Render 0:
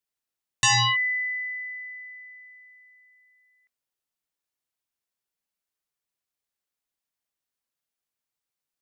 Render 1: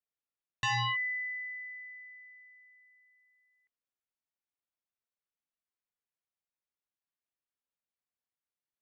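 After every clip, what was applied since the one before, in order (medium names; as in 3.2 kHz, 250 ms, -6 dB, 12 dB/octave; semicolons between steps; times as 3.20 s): low-pass 2.9 kHz 12 dB/octave; trim -7.5 dB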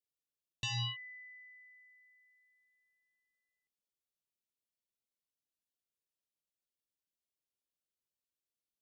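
high-order bell 1.3 kHz -16 dB; trim -1.5 dB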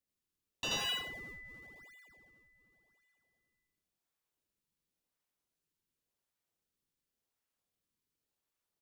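high-pass 1 kHz 24 dB/octave; in parallel at -5.5 dB: decimation with a swept rate 37×, swing 160% 0.91 Hz; on the sum: loudspeakers at several distances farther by 28 m 0 dB, 60 m -12 dB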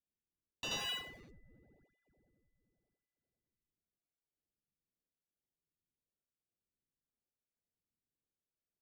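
local Wiener filter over 41 samples; trim -3.5 dB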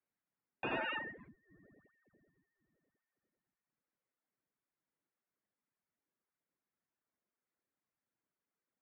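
mistuned SSB -170 Hz 350–2300 Hz; vibrato 12 Hz 50 cents; reverb removal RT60 0.7 s; trim +9.5 dB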